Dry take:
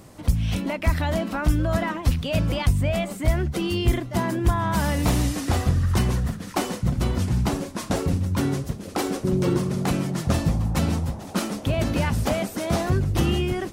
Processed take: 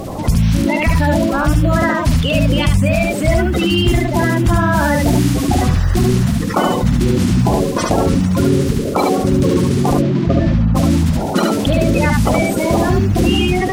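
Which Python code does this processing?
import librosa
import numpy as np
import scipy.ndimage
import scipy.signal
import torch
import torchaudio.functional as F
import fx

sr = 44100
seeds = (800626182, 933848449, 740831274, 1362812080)

p1 = fx.spec_quant(x, sr, step_db=30)
p2 = fx.high_shelf(p1, sr, hz=9700.0, db=-7.0)
p3 = fx.rider(p2, sr, range_db=10, speed_s=0.5)
p4 = p2 + (p3 * librosa.db_to_amplitude(0.5))
p5 = fx.quant_companded(p4, sr, bits=8)
p6 = fx.air_absorb(p5, sr, metres=210.0, at=(9.93, 10.74), fade=0.02)
p7 = p6 + fx.echo_single(p6, sr, ms=72, db=-3.0, dry=0)
p8 = fx.env_flatten(p7, sr, amount_pct=50)
y = p8 * librosa.db_to_amplitude(-1.5)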